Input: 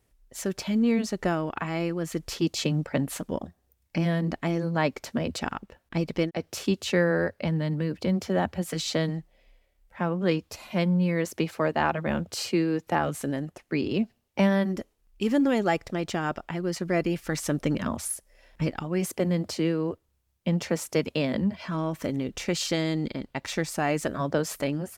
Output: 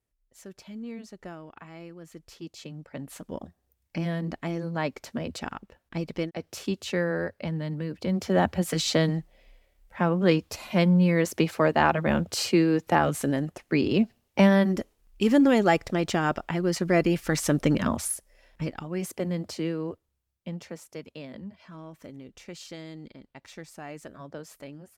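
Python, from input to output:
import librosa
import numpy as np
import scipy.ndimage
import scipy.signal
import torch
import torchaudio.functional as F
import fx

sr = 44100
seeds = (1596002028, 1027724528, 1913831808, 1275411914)

y = fx.gain(x, sr, db=fx.line((2.77, -15.0), (3.44, -4.0), (7.97, -4.0), (8.4, 3.5), (17.9, 3.5), (18.64, -4.0), (19.9, -4.0), (20.92, -14.5)))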